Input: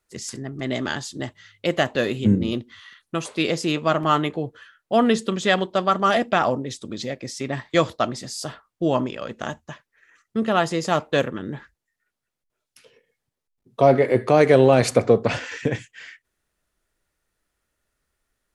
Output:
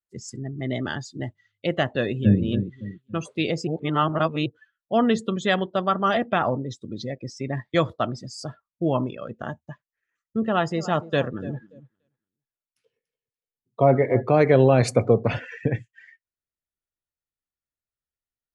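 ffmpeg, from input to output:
-filter_complex "[0:a]asplit=2[a][b];[b]afade=t=in:st=1.91:d=0.01,afade=t=out:st=2.41:d=0.01,aecho=0:1:280|560|840|1120:0.334965|0.133986|0.0535945|0.0214378[c];[a][c]amix=inputs=2:normalize=0,asplit=3[d][e][f];[d]afade=t=out:st=10.74:d=0.02[g];[e]aecho=1:1:289|578|867:0.168|0.052|0.0161,afade=t=in:st=10.74:d=0.02,afade=t=out:st=14.21:d=0.02[h];[f]afade=t=in:st=14.21:d=0.02[i];[g][h][i]amix=inputs=3:normalize=0,asplit=3[j][k][l];[j]atrim=end=3.672[m];[k]atrim=start=3.668:end=4.462,asetpts=PTS-STARTPTS,areverse[n];[l]atrim=start=4.458[o];[m][n]acrossfade=d=0.004:c1=hsin:c2=hsin[p];[p][o]acrossfade=d=0.004:c1=hsin:c2=hsin,afftdn=nr=21:nf=-33,equalizer=f=110:t=o:w=1.3:g=6.5,volume=-3dB"

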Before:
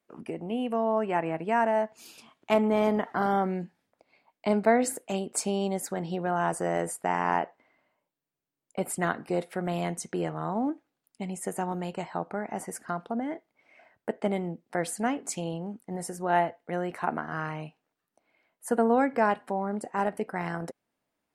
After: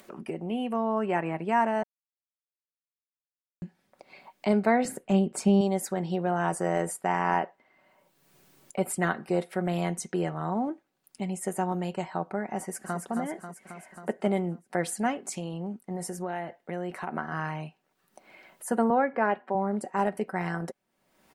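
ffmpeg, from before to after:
-filter_complex "[0:a]asettb=1/sr,asplit=3[a][b][c];[a]atrim=end=4.854[d];[b]atrim=start=4.85:end=5.61,asetpts=PTS-STARTPTS,afade=t=in:d=0.004:c=qsin,afade=t=out:st=0.756:d=0.004:c=qsin,bass=f=250:g=11,treble=f=4k:g=-7[e];[c]atrim=start=5.606[f];[d][e]acrossfade=d=0.004:c1=hsin:c2=qsin[g];[g][f]acrossfade=d=0.004:c1=qsin:c2=hsin,asplit=2[h][i];[i]afade=t=in:st=12.57:d=0.01,afade=t=out:st=12.99:d=0.01,aecho=0:1:270|540|810|1080|1350|1620|1890|2160:0.530884|0.318531|0.191118|0.114671|0.0688026|0.0412816|0.0247689|0.0148614[j];[h][j]amix=inputs=2:normalize=0,asplit=3[k][l][m];[k]afade=t=out:st=15.25:d=0.02[n];[l]acompressor=threshold=-31dB:ratio=3:attack=3.2:release=140:knee=1:detection=peak,afade=t=in:st=15.25:d=0.02,afade=t=out:st=17.13:d=0.02[o];[m]afade=t=in:st=17.13:d=0.02[p];[n][o][p]amix=inputs=3:normalize=0,asettb=1/sr,asplit=3[q][r][s];[q]atrim=end=18.904[t];[r]atrim=start=18.9:end=19.55,asetpts=PTS-STARTPTS,afade=t=in:d=0.004:c=qsin,afade=t=out:st=0.646:d=0.004:c=qsin,highpass=240,lowpass=2.4k[u];[s]atrim=start=19.546[v];[t][u]acrossfade=d=0.004:c1=hsin:c2=qsin[w];[w][v]acrossfade=d=0.004:c1=qsin:c2=hsin,asplit=3[x][y][z];[x]atrim=end=1.83,asetpts=PTS-STARTPTS,afade=t=out:st=1.826:d=0.004:c=hsin[aa];[y]atrim=start=1.83:end=3.62,asetpts=PTS-STARTPTS,volume=0[ab];[z]atrim=start=3.62,asetpts=PTS-STARTPTS,afade=t=in:d=0.004:c=hsin[ac];[aa][ab][ac]concat=n=3:v=0:a=1,aecho=1:1:5.3:0.4,acompressor=mode=upward:threshold=-37dB:ratio=2.5"

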